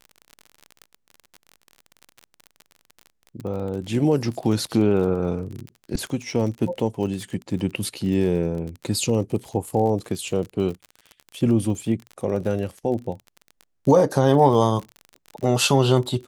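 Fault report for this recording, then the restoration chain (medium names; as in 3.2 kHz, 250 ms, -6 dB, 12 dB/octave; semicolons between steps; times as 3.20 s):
crackle 35 per s -30 dBFS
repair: de-click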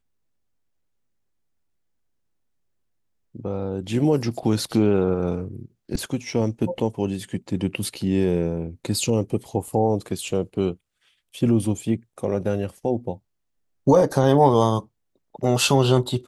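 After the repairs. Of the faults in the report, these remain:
nothing left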